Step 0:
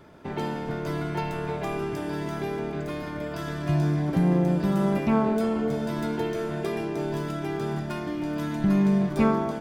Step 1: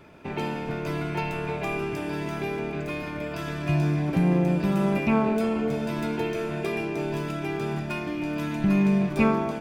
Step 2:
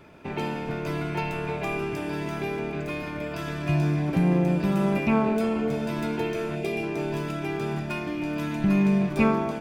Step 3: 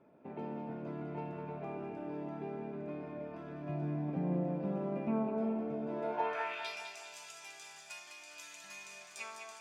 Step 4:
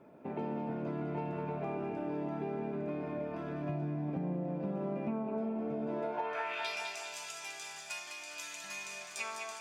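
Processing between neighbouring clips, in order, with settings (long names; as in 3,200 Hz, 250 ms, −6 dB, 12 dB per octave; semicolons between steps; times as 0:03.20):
parametric band 2,500 Hz +11.5 dB 0.27 octaves
gain on a spectral selection 0:06.55–0:06.83, 870–2,000 Hz −8 dB
band-pass filter sweep 250 Hz → 7,000 Hz, 0:05.85–0:06.83; low shelf with overshoot 430 Hz −10 dB, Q 1.5; echo with a time of its own for lows and highs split 400 Hz, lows 134 ms, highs 204 ms, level −7 dB; level +2.5 dB
downward compressor 10 to 1, threshold −39 dBFS, peak gain reduction 10.5 dB; level +6.5 dB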